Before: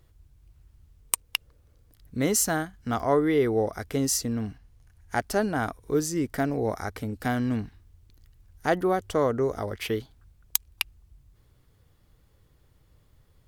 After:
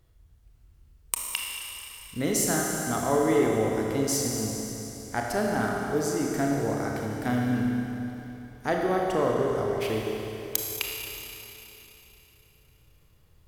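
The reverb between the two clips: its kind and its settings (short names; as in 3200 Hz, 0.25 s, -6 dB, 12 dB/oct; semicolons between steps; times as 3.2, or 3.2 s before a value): Schroeder reverb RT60 3.4 s, combs from 25 ms, DRR -1.5 dB; gain -3.5 dB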